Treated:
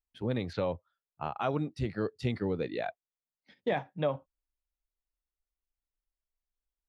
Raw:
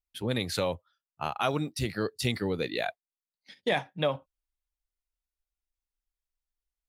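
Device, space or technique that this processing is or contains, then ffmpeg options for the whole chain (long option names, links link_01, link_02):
through cloth: -filter_complex "[0:a]asettb=1/sr,asplit=3[link_01][link_02][link_03];[link_01]atrim=end=0.534[link_04];[link_02]atrim=start=0.53:end=1.36,asetpts=PTS-STARTPTS,afade=type=in:duration=0.004:curve=qsin,afade=type=out:start_time=0.826:duration=0.004:curve=qsin,lowpass=frequency=5600:width=0.5412,lowpass=frequency=5600:width=1.3066[link_05];[link_03]atrim=start=1.356[link_06];[link_04][link_05]acrossfade=duration=0.004:curve1=hsin:curve2=qsin[link_07];[link_07][link_06]acrossfade=duration=0.004:curve1=qsin:curve2=hsin,lowpass=6800,highshelf=frequency=2400:gain=-16,volume=-1dB"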